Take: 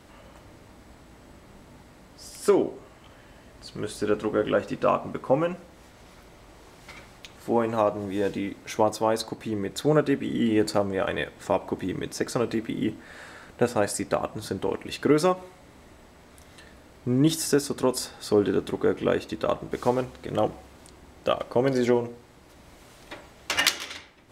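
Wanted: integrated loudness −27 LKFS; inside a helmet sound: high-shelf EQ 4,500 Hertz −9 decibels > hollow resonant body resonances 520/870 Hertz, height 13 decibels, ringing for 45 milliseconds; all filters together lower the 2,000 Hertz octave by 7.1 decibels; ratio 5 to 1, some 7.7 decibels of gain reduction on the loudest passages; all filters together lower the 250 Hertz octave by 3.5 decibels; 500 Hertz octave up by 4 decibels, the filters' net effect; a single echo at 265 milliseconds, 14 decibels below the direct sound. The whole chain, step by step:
parametric band 250 Hz −8 dB
parametric band 500 Hz +7.5 dB
parametric band 2,000 Hz −8 dB
downward compressor 5 to 1, threshold −22 dBFS
high-shelf EQ 4,500 Hz −9 dB
single-tap delay 265 ms −14 dB
hollow resonant body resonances 520/870 Hz, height 13 dB, ringing for 45 ms
level −4.5 dB

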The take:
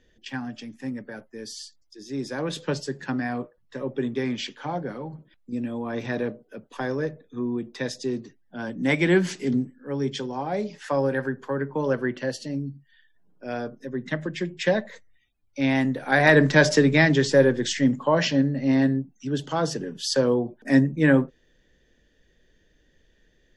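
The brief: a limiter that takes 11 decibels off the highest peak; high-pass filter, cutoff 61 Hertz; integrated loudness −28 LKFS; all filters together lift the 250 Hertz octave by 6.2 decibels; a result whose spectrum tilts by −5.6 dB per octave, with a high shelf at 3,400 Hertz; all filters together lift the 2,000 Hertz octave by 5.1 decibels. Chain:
high-pass filter 61 Hz
parametric band 250 Hz +7 dB
parametric band 2,000 Hz +8 dB
high-shelf EQ 3,400 Hz −8 dB
level −4.5 dB
brickwall limiter −15.5 dBFS

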